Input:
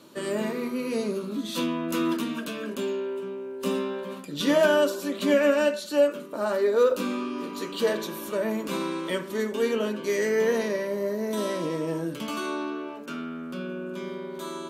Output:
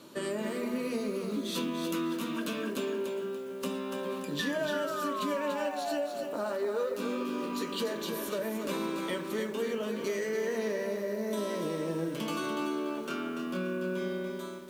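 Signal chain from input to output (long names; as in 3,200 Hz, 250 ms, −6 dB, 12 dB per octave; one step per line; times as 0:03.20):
fade-out on the ending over 0.64 s
0:04.39–0:06.24: sound drawn into the spectrogram fall 550–1,800 Hz −30 dBFS
0:12.95–0:14.30: double-tracking delay 27 ms −3 dB
downward compressor 5 to 1, threshold −31 dBFS, peak gain reduction 14.5 dB
feedback echo at a low word length 289 ms, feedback 35%, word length 9 bits, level −6 dB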